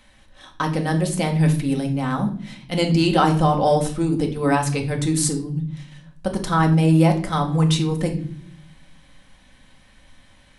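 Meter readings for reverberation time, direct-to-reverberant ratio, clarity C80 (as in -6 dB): no single decay rate, 2.0 dB, 15.0 dB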